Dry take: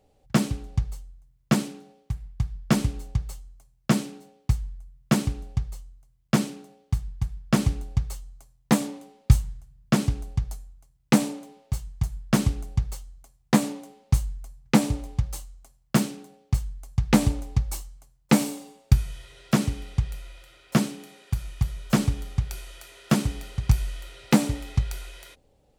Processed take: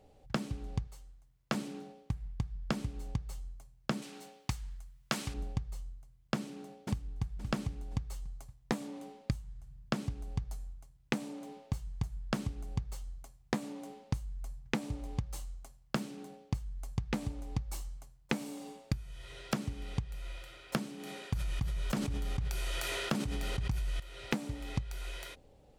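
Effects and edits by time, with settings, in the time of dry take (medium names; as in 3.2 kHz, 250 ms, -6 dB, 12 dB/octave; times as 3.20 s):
0.87–1.55 s: bass shelf 220 Hz -11 dB
4.02–5.34 s: tilt shelf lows -7.5 dB, about 680 Hz
6.35–7.22 s: echo throw 520 ms, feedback 35%, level -15.5 dB
20.98–24.00 s: decay stretcher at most 30 dB/s
whole clip: treble shelf 5.3 kHz -5.5 dB; compression 16:1, threshold -33 dBFS; trim +2.5 dB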